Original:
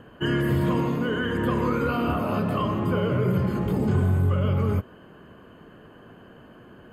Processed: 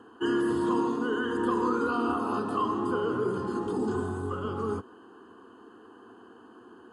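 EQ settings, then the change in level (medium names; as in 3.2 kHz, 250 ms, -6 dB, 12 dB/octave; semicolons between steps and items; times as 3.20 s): high-pass 190 Hz 12 dB/octave; brick-wall FIR low-pass 11 kHz; static phaser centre 590 Hz, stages 6; +1.0 dB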